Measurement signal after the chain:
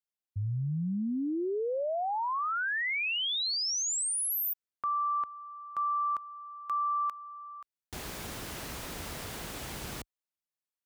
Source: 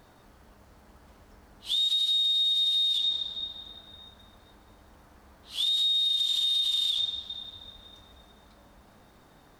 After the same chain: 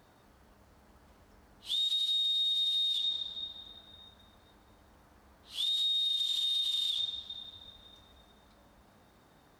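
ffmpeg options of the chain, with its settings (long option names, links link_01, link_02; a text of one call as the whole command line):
ffmpeg -i in.wav -af "highpass=41,volume=-5dB" out.wav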